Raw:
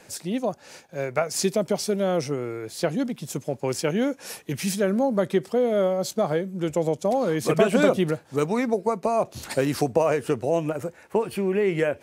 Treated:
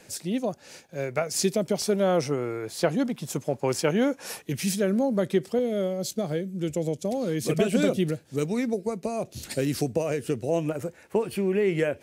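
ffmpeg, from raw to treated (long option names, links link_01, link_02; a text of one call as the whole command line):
ffmpeg -i in.wav -af "asetnsamples=nb_out_samples=441:pad=0,asendcmd='1.82 equalizer g 2.5;4.42 equalizer g -6.5;5.59 equalizer g -14;10.49 equalizer g -5.5',equalizer=frequency=1000:width_type=o:width=1.5:gain=-5.5" out.wav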